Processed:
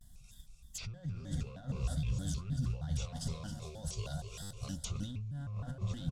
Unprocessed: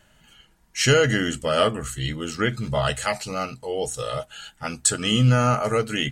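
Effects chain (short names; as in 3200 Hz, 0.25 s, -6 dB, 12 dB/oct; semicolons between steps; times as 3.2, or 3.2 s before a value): CVSD 64 kbps; on a send: echo 0.26 s -11 dB; on the sum: modulation noise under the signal 23 dB; in parallel at -3 dB: hard clip -21.5 dBFS, distortion -7 dB; on the sum: high shelf 3000 Hz +6.5 dB; treble ducked by the level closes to 2000 Hz, closed at -13.5 dBFS; diffused feedback echo 0.486 s, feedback 42%, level -15.5 dB; negative-ratio compressor -24 dBFS, ratio -1; passive tone stack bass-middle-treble 10-0-1; fixed phaser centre 850 Hz, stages 4; stuck buffer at 4.41, samples 512, times 8; shaped vibrato square 3.2 Hz, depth 250 cents; gain +5 dB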